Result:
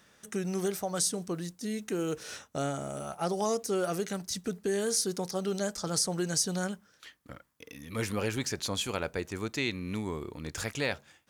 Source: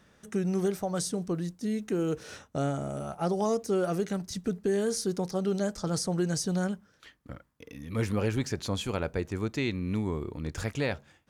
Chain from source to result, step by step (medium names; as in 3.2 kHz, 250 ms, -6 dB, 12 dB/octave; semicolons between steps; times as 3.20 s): tilt EQ +2 dB/octave